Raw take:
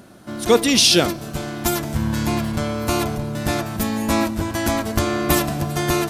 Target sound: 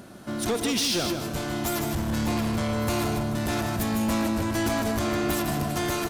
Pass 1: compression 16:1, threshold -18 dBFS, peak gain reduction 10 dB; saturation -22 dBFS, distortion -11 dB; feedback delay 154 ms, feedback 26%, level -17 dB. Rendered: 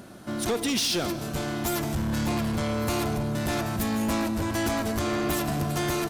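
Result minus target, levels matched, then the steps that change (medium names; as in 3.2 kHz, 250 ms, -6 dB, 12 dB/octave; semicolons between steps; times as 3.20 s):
echo-to-direct -10.5 dB
change: feedback delay 154 ms, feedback 26%, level -6.5 dB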